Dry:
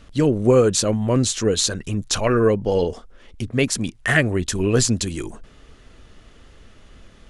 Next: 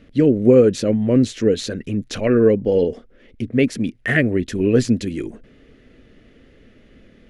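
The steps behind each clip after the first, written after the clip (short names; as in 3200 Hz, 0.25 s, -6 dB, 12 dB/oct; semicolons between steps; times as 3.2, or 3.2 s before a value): ten-band EQ 125 Hz +4 dB, 250 Hz +11 dB, 500 Hz +9 dB, 1000 Hz -8 dB, 2000 Hz +9 dB, 8000 Hz -8 dB; gain -7 dB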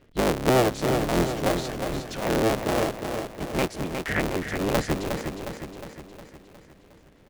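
cycle switcher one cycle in 3, inverted; on a send: feedback echo 0.36 s, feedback 55%, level -6.5 dB; on the sum: gain -9 dB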